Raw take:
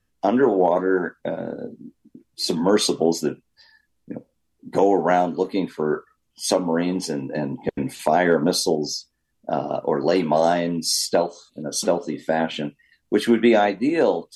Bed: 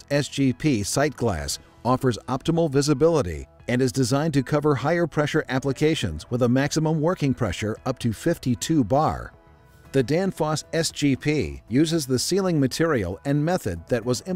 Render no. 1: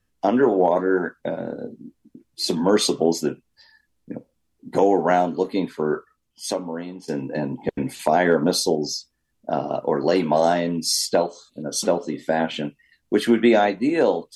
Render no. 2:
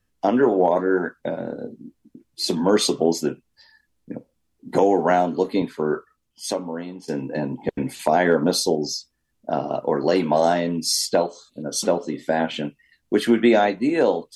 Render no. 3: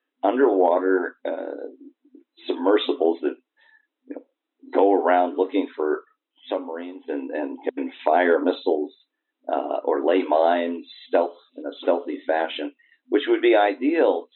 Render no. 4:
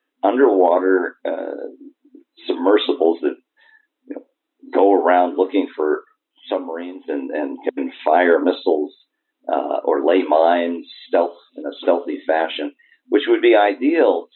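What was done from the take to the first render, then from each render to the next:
5.85–7.08 fade out, to -17 dB
4.69–5.62 three-band squash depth 40%
FFT band-pass 250–4000 Hz
gain +4.5 dB; limiter -3 dBFS, peak gain reduction 2.5 dB

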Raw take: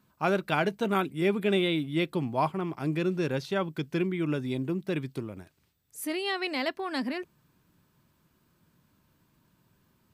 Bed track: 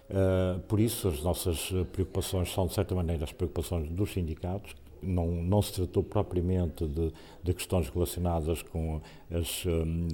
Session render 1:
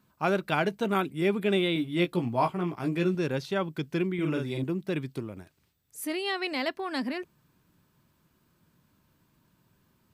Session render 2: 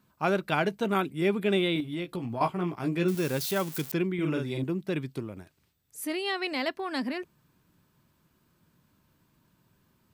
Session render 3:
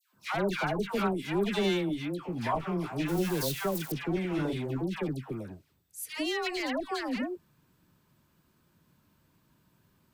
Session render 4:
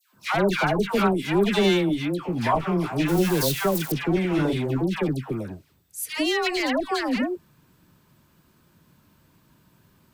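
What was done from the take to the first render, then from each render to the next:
1.74–3.15 doubler 17 ms -5 dB; 4.14–4.64 doubler 45 ms -3.5 dB; 6.06–6.53 brick-wall FIR high-pass 170 Hz
1.8–2.41 compressor 10:1, threshold -29 dBFS; 3.08–3.92 switching spikes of -26.5 dBFS
one-sided clip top -29.5 dBFS; dispersion lows, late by 0.14 s, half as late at 1200 Hz
gain +8 dB

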